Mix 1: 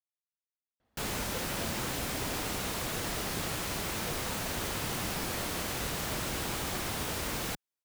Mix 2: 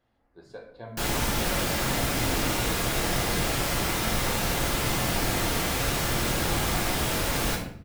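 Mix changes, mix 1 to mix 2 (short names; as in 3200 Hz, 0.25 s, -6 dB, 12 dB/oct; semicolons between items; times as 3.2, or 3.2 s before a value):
speech: entry -0.80 s; reverb: on, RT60 0.65 s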